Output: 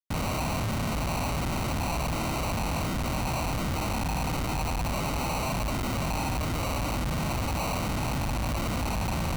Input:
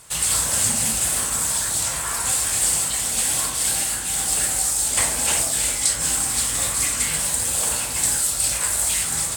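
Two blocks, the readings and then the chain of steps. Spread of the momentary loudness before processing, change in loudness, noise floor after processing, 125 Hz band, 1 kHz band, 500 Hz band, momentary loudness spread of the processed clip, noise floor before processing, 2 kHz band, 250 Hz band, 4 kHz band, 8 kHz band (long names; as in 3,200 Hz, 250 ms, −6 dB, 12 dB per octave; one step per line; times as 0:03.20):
2 LU, −10.5 dB, −30 dBFS, +7.5 dB, +1.5 dB, +2.5 dB, 1 LU, −27 dBFS, −5.5 dB, +6.5 dB, −10.5 dB, −22.5 dB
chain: high-shelf EQ 2,600 Hz +6 dB
auto-filter low-pass saw down 1.4 Hz 610–1,700 Hz
sample-rate reduction 1,700 Hz, jitter 0%
comparator with hysteresis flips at −38 dBFS
parametric band 420 Hz −9 dB 0.85 octaves
level +3 dB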